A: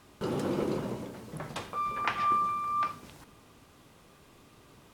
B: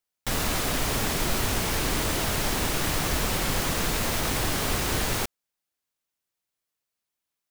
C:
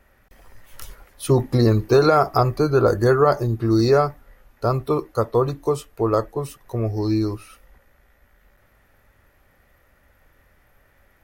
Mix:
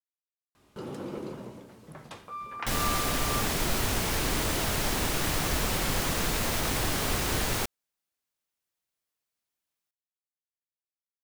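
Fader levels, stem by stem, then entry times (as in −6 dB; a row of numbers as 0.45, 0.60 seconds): −6.5 dB, −2.0 dB, muted; 0.55 s, 2.40 s, muted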